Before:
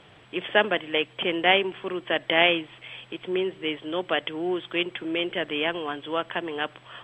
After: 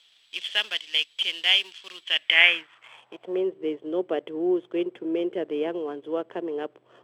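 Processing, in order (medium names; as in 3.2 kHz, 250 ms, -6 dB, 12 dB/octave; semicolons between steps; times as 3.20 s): companding laws mixed up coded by A; tone controls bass +3 dB, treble +15 dB; band-pass sweep 4 kHz -> 410 Hz, 1.97–3.56 s; trim +6 dB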